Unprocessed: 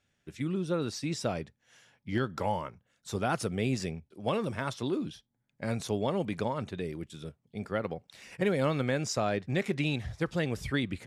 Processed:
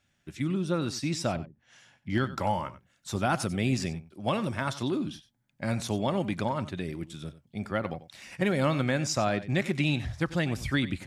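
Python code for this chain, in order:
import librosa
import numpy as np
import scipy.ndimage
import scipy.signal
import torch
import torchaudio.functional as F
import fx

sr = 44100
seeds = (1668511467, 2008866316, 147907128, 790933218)

y = fx.env_lowpass_down(x, sr, base_hz=330.0, full_db=-35.5, at=(1.35, 2.1))
y = fx.peak_eq(y, sr, hz=450.0, db=-10.5, octaves=0.3)
y = y + 10.0 ** (-15.5 / 20.0) * np.pad(y, (int(93 * sr / 1000.0), 0))[:len(y)]
y = y * librosa.db_to_amplitude(3.5)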